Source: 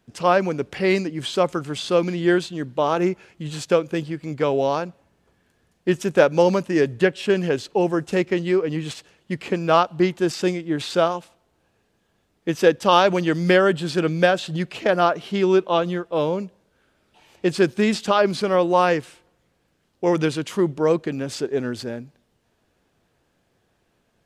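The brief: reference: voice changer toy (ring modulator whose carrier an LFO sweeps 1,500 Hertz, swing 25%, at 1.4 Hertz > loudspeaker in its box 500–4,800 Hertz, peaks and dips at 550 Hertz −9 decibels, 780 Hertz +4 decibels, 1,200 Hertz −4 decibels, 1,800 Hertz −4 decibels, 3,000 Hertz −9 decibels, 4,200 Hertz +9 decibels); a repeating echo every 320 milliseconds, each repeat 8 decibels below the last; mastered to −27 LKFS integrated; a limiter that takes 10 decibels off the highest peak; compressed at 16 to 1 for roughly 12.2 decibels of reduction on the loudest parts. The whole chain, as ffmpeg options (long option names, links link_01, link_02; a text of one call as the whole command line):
ffmpeg -i in.wav -af "acompressor=threshold=-22dB:ratio=16,alimiter=limit=-21.5dB:level=0:latency=1,aecho=1:1:320|640|960|1280|1600:0.398|0.159|0.0637|0.0255|0.0102,aeval=exprs='val(0)*sin(2*PI*1500*n/s+1500*0.25/1.4*sin(2*PI*1.4*n/s))':channel_layout=same,highpass=500,equalizer=frequency=550:width_type=q:width=4:gain=-9,equalizer=frequency=780:width_type=q:width=4:gain=4,equalizer=frequency=1200:width_type=q:width=4:gain=-4,equalizer=frequency=1800:width_type=q:width=4:gain=-4,equalizer=frequency=3000:width_type=q:width=4:gain=-9,equalizer=frequency=4200:width_type=q:width=4:gain=9,lowpass=frequency=4800:width=0.5412,lowpass=frequency=4800:width=1.3066,volume=8dB" out.wav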